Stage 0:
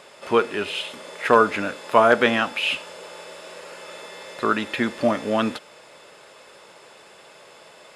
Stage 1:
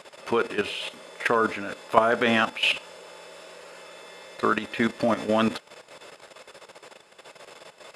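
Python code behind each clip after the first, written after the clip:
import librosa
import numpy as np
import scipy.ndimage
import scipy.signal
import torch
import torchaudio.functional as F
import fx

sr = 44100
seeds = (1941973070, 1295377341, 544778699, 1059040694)

y = fx.level_steps(x, sr, step_db=12)
y = y * 10.0 ** (3.0 / 20.0)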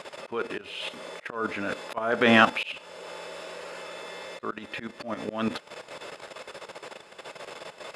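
y = fx.high_shelf(x, sr, hz=6700.0, db=-7.0)
y = fx.auto_swell(y, sr, attack_ms=483.0)
y = y * 10.0 ** (5.5 / 20.0)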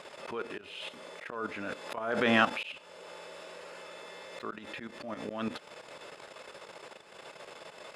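y = fx.pre_swell(x, sr, db_per_s=66.0)
y = y * 10.0 ** (-7.0 / 20.0)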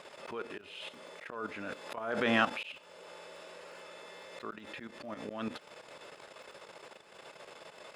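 y = fx.dmg_crackle(x, sr, seeds[0], per_s=28.0, level_db=-52.0)
y = y * 10.0 ** (-3.0 / 20.0)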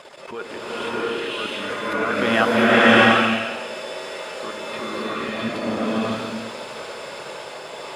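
y = fx.spec_quant(x, sr, step_db=15)
y = fx.rev_bloom(y, sr, seeds[1], attack_ms=680, drr_db=-10.0)
y = y * 10.0 ** (8.0 / 20.0)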